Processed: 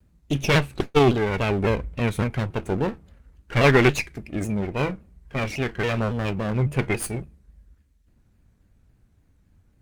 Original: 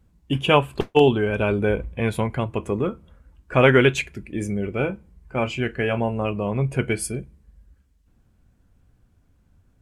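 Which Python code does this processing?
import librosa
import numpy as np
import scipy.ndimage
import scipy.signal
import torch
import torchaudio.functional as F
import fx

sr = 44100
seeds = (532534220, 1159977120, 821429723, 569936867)

y = fx.lower_of_two(x, sr, delay_ms=0.48)
y = fx.vibrato_shape(y, sr, shape='saw_down', rate_hz=3.6, depth_cents=160.0)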